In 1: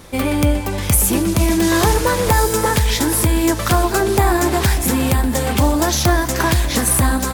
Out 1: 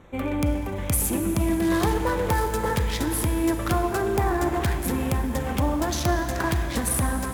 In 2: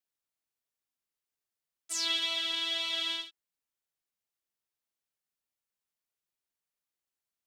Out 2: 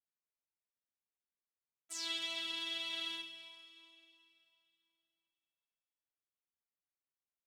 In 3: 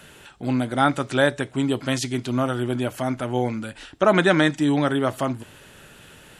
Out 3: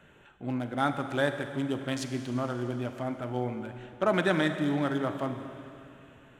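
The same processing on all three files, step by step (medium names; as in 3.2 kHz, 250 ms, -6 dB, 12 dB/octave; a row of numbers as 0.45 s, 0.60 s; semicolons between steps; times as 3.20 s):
local Wiener filter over 9 samples; Schroeder reverb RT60 2.8 s, combs from 33 ms, DRR 7.5 dB; trim -8.5 dB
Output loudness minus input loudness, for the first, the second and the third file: -8.5 LU, -8.5 LU, -8.0 LU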